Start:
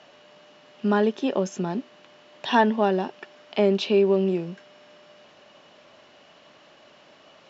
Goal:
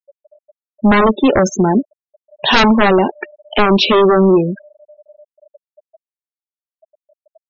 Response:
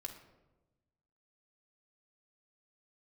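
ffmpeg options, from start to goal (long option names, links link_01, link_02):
-filter_complex "[0:a]asplit=2[link_01][link_02];[link_02]adelay=14,volume=-12dB[link_03];[link_01][link_03]amix=inputs=2:normalize=0,aeval=exprs='0.447*sin(PI/2*3.98*val(0)/0.447)':channel_layout=same,afftfilt=real='re*gte(hypot(re,im),0.141)':imag='im*gte(hypot(re,im),0.141)':win_size=1024:overlap=0.75,volume=1dB"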